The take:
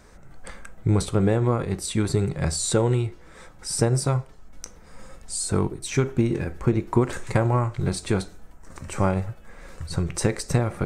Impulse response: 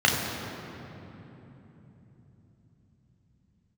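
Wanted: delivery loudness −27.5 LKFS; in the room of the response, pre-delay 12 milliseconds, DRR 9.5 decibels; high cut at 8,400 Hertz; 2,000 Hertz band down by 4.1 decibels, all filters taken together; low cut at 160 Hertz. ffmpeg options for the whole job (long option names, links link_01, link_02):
-filter_complex "[0:a]highpass=160,lowpass=8400,equalizer=frequency=2000:width_type=o:gain=-5.5,asplit=2[link_01][link_02];[1:a]atrim=start_sample=2205,adelay=12[link_03];[link_02][link_03]afir=irnorm=-1:irlink=0,volume=-27.5dB[link_04];[link_01][link_04]amix=inputs=2:normalize=0,volume=-1dB"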